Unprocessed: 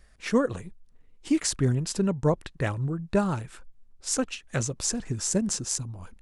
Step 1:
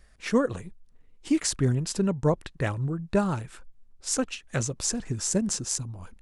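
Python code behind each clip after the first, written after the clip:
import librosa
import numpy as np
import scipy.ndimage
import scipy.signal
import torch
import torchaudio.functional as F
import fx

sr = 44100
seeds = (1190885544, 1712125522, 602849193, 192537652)

y = x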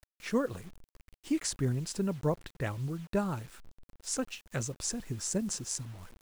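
y = fx.quant_dither(x, sr, seeds[0], bits=8, dither='none')
y = y * 10.0 ** (-6.5 / 20.0)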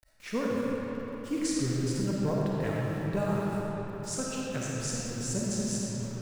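y = fx.rev_freeverb(x, sr, rt60_s=4.4, hf_ratio=0.6, predelay_ms=10, drr_db=-5.5)
y = y * 10.0 ** (-3.0 / 20.0)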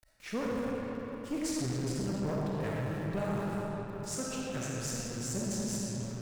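y = fx.tube_stage(x, sr, drive_db=28.0, bias=0.45)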